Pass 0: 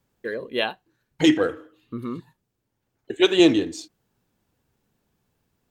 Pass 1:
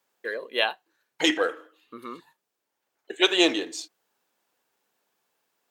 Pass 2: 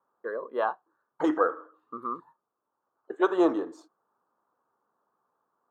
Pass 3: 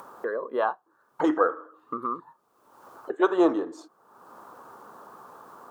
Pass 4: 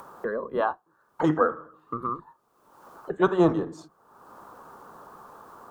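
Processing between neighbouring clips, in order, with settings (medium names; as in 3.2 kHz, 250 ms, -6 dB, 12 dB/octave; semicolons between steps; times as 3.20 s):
high-pass 580 Hz 12 dB/octave; trim +2 dB
FFT filter 750 Hz 0 dB, 1.2 kHz +9 dB, 2.3 kHz -27 dB, 10 kHz -22 dB
upward compressor, threshold -27 dBFS; trim +2 dB
octave divider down 1 oct, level -4 dB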